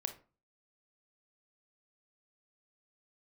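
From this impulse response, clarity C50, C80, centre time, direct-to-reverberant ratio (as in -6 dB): 12.0 dB, 18.5 dB, 8 ms, 7.0 dB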